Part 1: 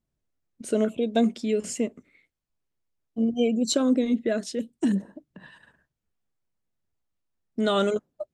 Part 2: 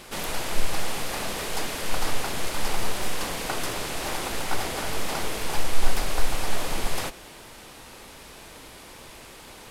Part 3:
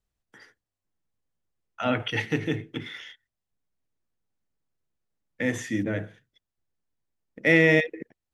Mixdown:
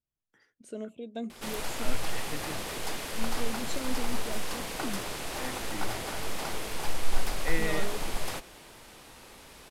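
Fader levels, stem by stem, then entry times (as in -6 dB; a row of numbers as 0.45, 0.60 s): -15.0, -5.5, -14.5 dB; 0.00, 1.30, 0.00 s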